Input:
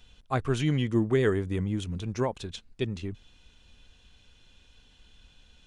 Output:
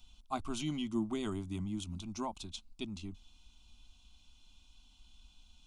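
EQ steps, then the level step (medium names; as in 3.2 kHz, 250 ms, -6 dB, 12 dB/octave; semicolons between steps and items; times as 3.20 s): peaking EQ 440 Hz -9.5 dB 1.6 oct; static phaser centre 470 Hz, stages 6; -1.0 dB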